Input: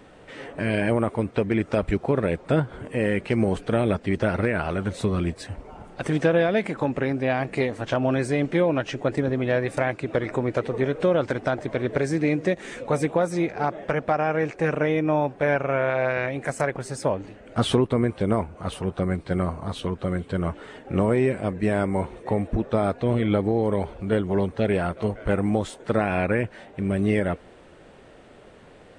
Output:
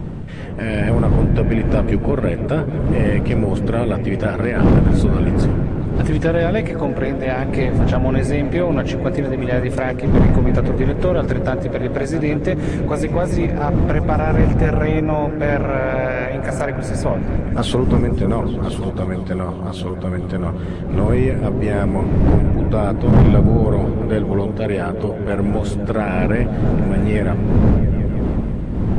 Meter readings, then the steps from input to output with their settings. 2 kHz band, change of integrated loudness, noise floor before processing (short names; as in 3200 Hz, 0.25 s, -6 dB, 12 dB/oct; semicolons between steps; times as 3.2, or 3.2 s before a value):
+2.0 dB, +6.5 dB, -49 dBFS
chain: wind noise 190 Hz -21 dBFS; soft clip -8.5 dBFS, distortion -10 dB; repeats that get brighter 0.167 s, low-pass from 200 Hz, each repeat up 1 oct, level -3 dB; gain +2.5 dB